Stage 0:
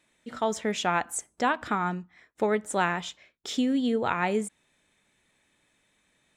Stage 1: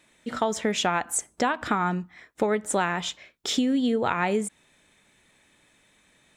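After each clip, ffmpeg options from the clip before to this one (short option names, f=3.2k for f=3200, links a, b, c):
-af "acompressor=threshold=-29dB:ratio=4,volume=7.5dB"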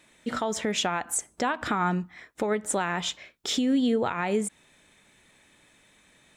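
-af "alimiter=limit=-18.5dB:level=0:latency=1:release=188,volume=2dB"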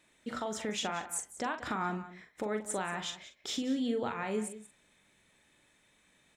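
-filter_complex "[0:a]asplit=2[a][b];[b]adelay=42,volume=-8dB[c];[a][c]amix=inputs=2:normalize=0,aecho=1:1:183:0.188,volume=-8.5dB"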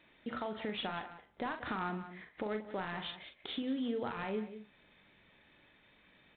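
-af "acompressor=threshold=-51dB:ratio=1.5,volume=4dB" -ar 8000 -c:a adpcm_ima_wav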